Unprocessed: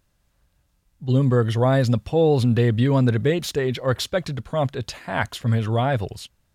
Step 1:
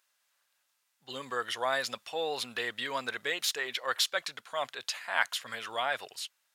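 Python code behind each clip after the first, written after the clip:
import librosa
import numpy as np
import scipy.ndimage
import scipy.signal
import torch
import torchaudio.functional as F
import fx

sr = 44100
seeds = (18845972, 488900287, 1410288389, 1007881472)

y = scipy.signal.sosfilt(scipy.signal.butter(2, 1200.0, 'highpass', fs=sr, output='sos'), x)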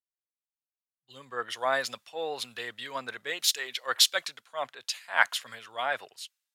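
y = fx.band_widen(x, sr, depth_pct=100)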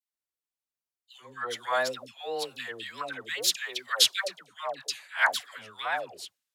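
y = fx.wow_flutter(x, sr, seeds[0], rate_hz=2.1, depth_cents=100.0)
y = fx.dispersion(y, sr, late='lows', ms=143.0, hz=800.0)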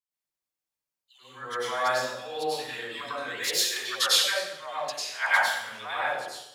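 y = fx.rev_plate(x, sr, seeds[1], rt60_s=0.83, hf_ratio=0.85, predelay_ms=85, drr_db=-9.0)
y = y * librosa.db_to_amplitude(-6.5)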